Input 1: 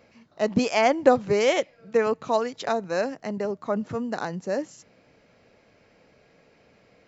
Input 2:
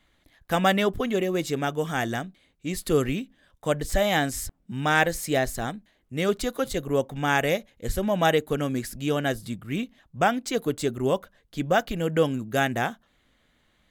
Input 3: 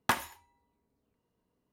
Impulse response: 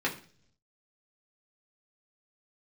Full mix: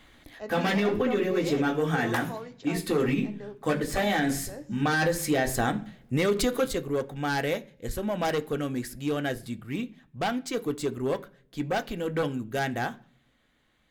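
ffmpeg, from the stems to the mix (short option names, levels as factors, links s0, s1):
-filter_complex "[0:a]volume=0.119,asplit=3[s0][s1][s2];[s1]volume=0.335[s3];[1:a]aeval=exprs='0.501*sin(PI/2*3.16*val(0)/0.501)':c=same,volume=0.531,afade=t=out:st=6.32:d=0.48:silence=0.223872,asplit=2[s4][s5];[s5]volume=0.188[s6];[2:a]adelay=2050,volume=0.631[s7];[s2]apad=whole_len=613402[s8];[s4][s8]sidechaincompress=threshold=0.00141:ratio=8:attack=16:release=1460[s9];[3:a]atrim=start_sample=2205[s10];[s3][s6]amix=inputs=2:normalize=0[s11];[s11][s10]afir=irnorm=-1:irlink=0[s12];[s0][s9][s7][s12]amix=inputs=4:normalize=0,alimiter=limit=0.15:level=0:latency=1:release=93"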